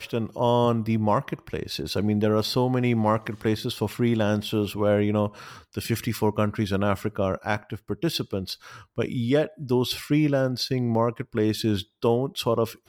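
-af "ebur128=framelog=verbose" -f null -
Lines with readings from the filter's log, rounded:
Integrated loudness:
  I:         -25.3 LUFS
  Threshold: -35.4 LUFS
Loudness range:
  LRA:         3.2 LU
  Threshold: -45.6 LUFS
  LRA low:   -27.4 LUFS
  LRA high:  -24.2 LUFS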